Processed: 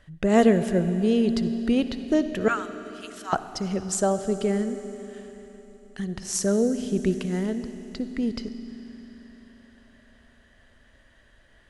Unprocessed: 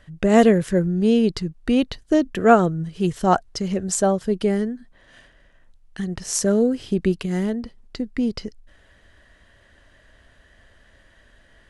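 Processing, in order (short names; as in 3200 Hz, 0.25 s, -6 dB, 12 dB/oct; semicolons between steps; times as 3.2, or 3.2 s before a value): 2.48–3.33 inverse Chebyshev high-pass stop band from 460 Hz, stop band 50 dB; reverb RT60 3.9 s, pre-delay 55 ms, DRR 10.5 dB; gain -4 dB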